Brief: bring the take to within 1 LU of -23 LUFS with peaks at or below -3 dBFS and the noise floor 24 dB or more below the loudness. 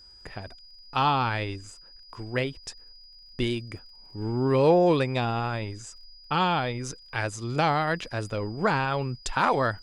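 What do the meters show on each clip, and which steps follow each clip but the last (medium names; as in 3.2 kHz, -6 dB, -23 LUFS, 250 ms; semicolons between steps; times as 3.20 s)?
tick rate 30 per s; steady tone 4.9 kHz; tone level -49 dBFS; loudness -26.5 LUFS; peak level -9.5 dBFS; loudness target -23.0 LUFS
-> de-click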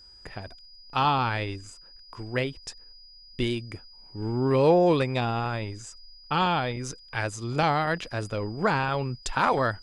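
tick rate 0 per s; steady tone 4.9 kHz; tone level -49 dBFS
-> band-stop 4.9 kHz, Q 30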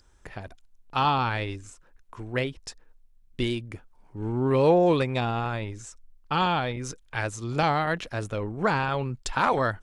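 steady tone not found; loudness -26.5 LUFS; peak level -9.5 dBFS; loudness target -23.0 LUFS
-> trim +3.5 dB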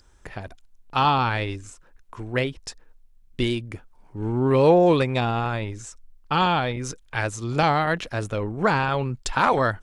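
loudness -23.0 LUFS; peak level -6.0 dBFS; noise floor -55 dBFS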